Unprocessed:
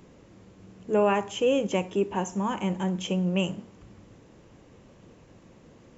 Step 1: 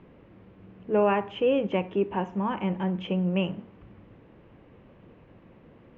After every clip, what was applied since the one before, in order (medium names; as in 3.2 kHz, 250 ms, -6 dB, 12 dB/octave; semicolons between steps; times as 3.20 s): low-pass 2.9 kHz 24 dB/octave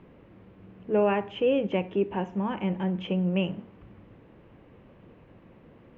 dynamic bell 1.1 kHz, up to -5 dB, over -42 dBFS, Q 1.8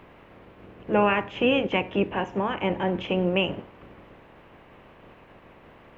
spectral peaks clipped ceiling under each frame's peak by 15 dB; trim +2.5 dB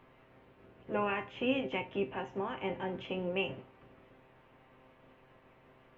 feedback comb 130 Hz, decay 0.2 s, harmonics all, mix 80%; trim -3.5 dB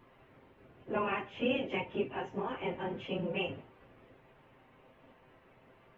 phase randomisation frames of 50 ms